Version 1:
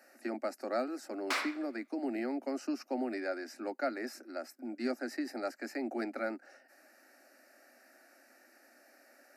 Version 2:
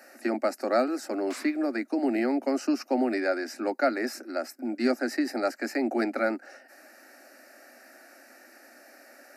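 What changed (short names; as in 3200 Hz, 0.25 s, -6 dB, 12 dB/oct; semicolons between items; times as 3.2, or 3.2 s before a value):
speech +9.5 dB; background -10.5 dB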